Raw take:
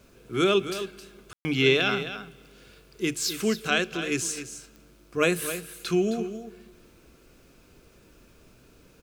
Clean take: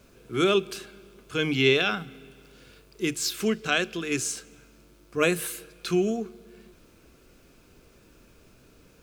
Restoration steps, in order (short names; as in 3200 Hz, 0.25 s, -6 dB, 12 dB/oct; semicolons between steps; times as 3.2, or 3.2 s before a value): de-click; room tone fill 1.33–1.45; inverse comb 0.265 s -11 dB